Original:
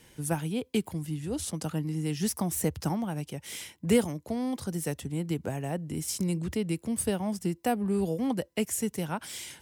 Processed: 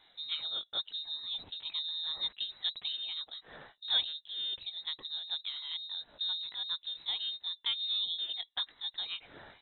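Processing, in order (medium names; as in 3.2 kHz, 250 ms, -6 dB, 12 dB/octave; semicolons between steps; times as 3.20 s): sawtooth pitch modulation +1.5 st, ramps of 159 ms; frequency inversion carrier 3.9 kHz; trim -6 dB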